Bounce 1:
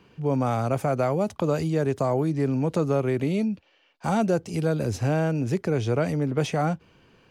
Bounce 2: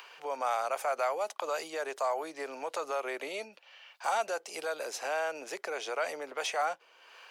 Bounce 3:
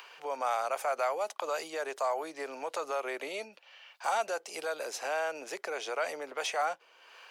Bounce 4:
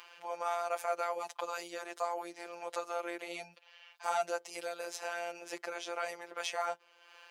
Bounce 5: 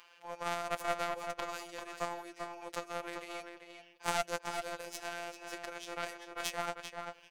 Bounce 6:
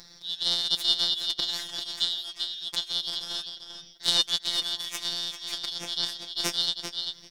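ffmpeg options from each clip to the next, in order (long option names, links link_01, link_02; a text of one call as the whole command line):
ffmpeg -i in.wav -filter_complex "[0:a]highpass=frequency=550:width=0.5412,highpass=frequency=550:width=1.3066,acrossover=split=710[link_01][link_02];[link_01]alimiter=level_in=10dB:limit=-24dB:level=0:latency=1:release=58,volume=-10dB[link_03];[link_02]acompressor=mode=upward:threshold=-42dB:ratio=2.5[link_04];[link_03][link_04]amix=inputs=2:normalize=0" out.wav
ffmpeg -i in.wav -af anull out.wav
ffmpeg -i in.wav -af "afftfilt=real='hypot(re,im)*cos(PI*b)':imag='0':win_size=1024:overlap=0.75" out.wav
ffmpeg -i in.wav -filter_complex "[0:a]aeval=exprs='0.141*(cos(1*acos(clip(val(0)/0.141,-1,1)))-cos(1*PI/2))+0.0316*(cos(2*acos(clip(val(0)/0.141,-1,1)))-cos(2*PI/2))+0.0282*(cos(3*acos(clip(val(0)/0.141,-1,1)))-cos(3*PI/2))':channel_layout=same,asplit=2[link_01][link_02];[link_02]adelay=392,lowpass=frequency=3900:poles=1,volume=-5.5dB,asplit=2[link_03][link_04];[link_04]adelay=392,lowpass=frequency=3900:poles=1,volume=0.16,asplit=2[link_05][link_06];[link_06]adelay=392,lowpass=frequency=3900:poles=1,volume=0.16[link_07];[link_03][link_05][link_07]amix=inputs=3:normalize=0[link_08];[link_01][link_08]amix=inputs=2:normalize=0,volume=2dB" out.wav
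ffmpeg -i in.wav -filter_complex "[0:a]afftfilt=real='real(if(lt(b,272),68*(eq(floor(b/68),0)*2+eq(floor(b/68),1)*3+eq(floor(b/68),2)*0+eq(floor(b/68),3)*1)+mod(b,68),b),0)':imag='imag(if(lt(b,272),68*(eq(floor(b/68),0)*2+eq(floor(b/68),1)*3+eq(floor(b/68),2)*0+eq(floor(b/68),3)*1)+mod(b,68),b),0)':win_size=2048:overlap=0.75,asplit=2[link_01][link_02];[link_02]asoftclip=type=tanh:threshold=-21.5dB,volume=-6dB[link_03];[link_01][link_03]amix=inputs=2:normalize=0,volume=6.5dB" out.wav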